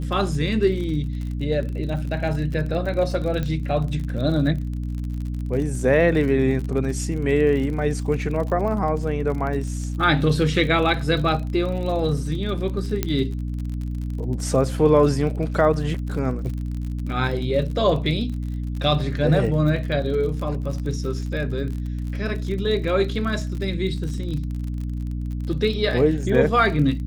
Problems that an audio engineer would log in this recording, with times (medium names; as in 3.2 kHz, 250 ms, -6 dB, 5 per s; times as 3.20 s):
crackle 45 per s -30 dBFS
hum 60 Hz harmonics 5 -27 dBFS
3.43 s: pop -15 dBFS
13.03 s: pop -7 dBFS